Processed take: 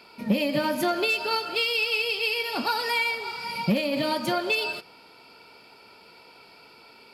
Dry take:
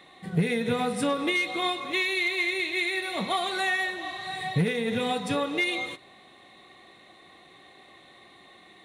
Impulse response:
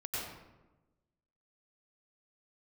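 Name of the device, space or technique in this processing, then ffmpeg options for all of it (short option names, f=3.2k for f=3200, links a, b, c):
nightcore: -af "asetrate=54684,aresample=44100,volume=1.5dB"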